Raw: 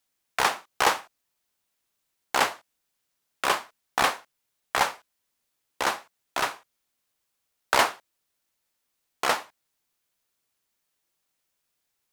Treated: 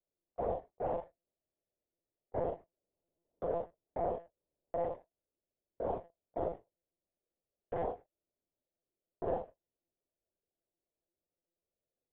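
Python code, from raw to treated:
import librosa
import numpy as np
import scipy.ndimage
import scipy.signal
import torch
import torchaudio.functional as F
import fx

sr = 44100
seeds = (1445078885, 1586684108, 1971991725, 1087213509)

y = scipy.signal.sosfilt(scipy.signal.ellip(3, 1.0, 50, [120.0, 610.0], 'bandpass', fs=sr, output='sos'), x)
y = fx.low_shelf(y, sr, hz=240.0, db=-9.0)
y = fx.leveller(y, sr, passes=1)
y = fx.level_steps(y, sr, step_db=21)
y = fx.air_absorb(y, sr, metres=150.0)
y = fx.doubler(y, sr, ms=24.0, db=-8.5)
y = fx.room_early_taps(y, sr, ms=(36, 51), db=(-3.5, -8.5))
y = fx.lpc_monotone(y, sr, seeds[0], pitch_hz=170.0, order=16)
y = fx.band_squash(y, sr, depth_pct=40, at=(2.41, 4.92))
y = F.gain(torch.from_numpy(y), 6.5).numpy()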